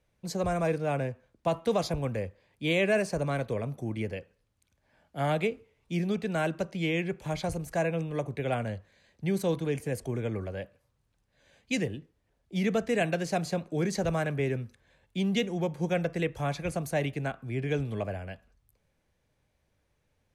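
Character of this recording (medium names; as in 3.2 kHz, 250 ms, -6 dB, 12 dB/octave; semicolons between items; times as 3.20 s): noise floor -75 dBFS; spectral tilt -5.5 dB/octave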